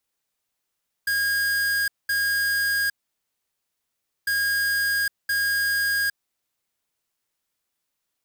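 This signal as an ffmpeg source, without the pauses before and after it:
ffmpeg -f lavfi -i "aevalsrc='0.0708*(2*lt(mod(1630*t,1),0.5)-1)*clip(min(mod(mod(t,3.2),1.02),0.81-mod(mod(t,3.2),1.02))/0.005,0,1)*lt(mod(t,3.2),2.04)':duration=6.4:sample_rate=44100" out.wav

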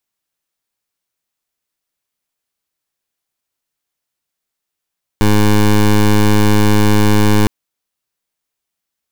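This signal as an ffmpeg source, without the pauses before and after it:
ffmpeg -f lavfi -i "aevalsrc='0.335*(2*lt(mod(105*t,1),0.16)-1)':duration=2.26:sample_rate=44100" out.wav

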